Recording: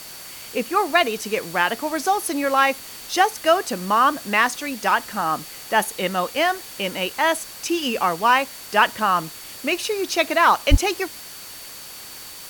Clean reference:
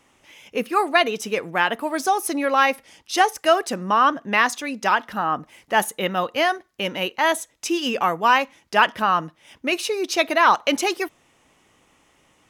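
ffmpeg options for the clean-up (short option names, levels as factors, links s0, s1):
-filter_complex "[0:a]bandreject=f=4500:w=30,asplit=3[s0][s1][s2];[s0]afade=t=out:st=10.7:d=0.02[s3];[s1]highpass=f=140:w=0.5412,highpass=f=140:w=1.3066,afade=t=in:st=10.7:d=0.02,afade=t=out:st=10.82:d=0.02[s4];[s2]afade=t=in:st=10.82:d=0.02[s5];[s3][s4][s5]amix=inputs=3:normalize=0,afwtdn=0.013"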